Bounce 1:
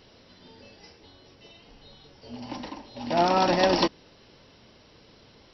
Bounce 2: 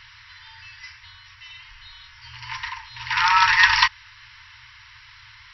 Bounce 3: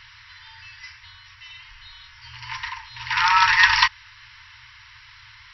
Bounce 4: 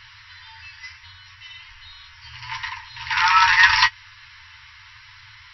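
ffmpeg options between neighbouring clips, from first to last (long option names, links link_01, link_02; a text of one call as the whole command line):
ffmpeg -i in.wav -af "equalizer=frequency=1900:width=1.3:gain=13.5,afftfilt=real='re*(1-between(b*sr/4096,120,880))':imag='im*(1-between(b*sr/4096,120,880))':win_size=4096:overlap=0.75,volume=5dB" out.wav
ffmpeg -i in.wav -af anull out.wav
ffmpeg -i in.wav -af "apsyclip=5dB,flanger=delay=9.9:depth=2.6:regen=39:speed=0.77:shape=sinusoidal" out.wav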